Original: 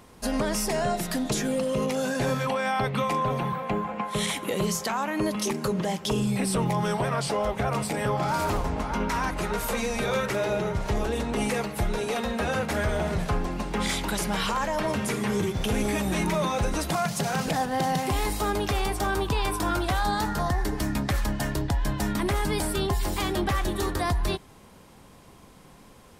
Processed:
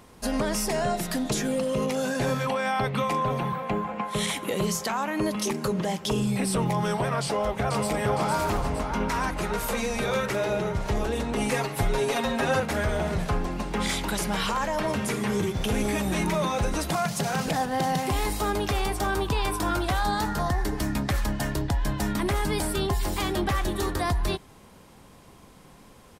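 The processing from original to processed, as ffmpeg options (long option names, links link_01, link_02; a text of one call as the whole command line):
ffmpeg -i in.wav -filter_complex "[0:a]asplit=2[link_01][link_02];[link_02]afade=type=in:start_time=7.24:duration=0.01,afade=type=out:start_time=7.88:duration=0.01,aecho=0:1:460|920|1380|1840|2300|2760|3220:0.562341|0.309288|0.170108|0.0935595|0.0514577|0.0283018|0.015566[link_03];[link_01][link_03]amix=inputs=2:normalize=0,asettb=1/sr,asplit=3[link_04][link_05][link_06];[link_04]atrim=end=11.514[link_07];[link_05]atrim=start=11.51:end=12.6,asetpts=PTS-STARTPTS,afade=type=in:duration=0.004:curve=qsin,afade=type=out:start_time=1.086:duration=0.004:curve=qsin,aecho=1:1:7.5:0.94,atrim=end_sample=48069[link_08];[link_06]atrim=start=12.596[link_09];[link_07][link_08]acrossfade=duration=0.004:curve1=hsin:curve2=qsin[link_10];[link_10][link_09]acrossfade=duration=0.004:curve1=qsin:curve2=hsin" out.wav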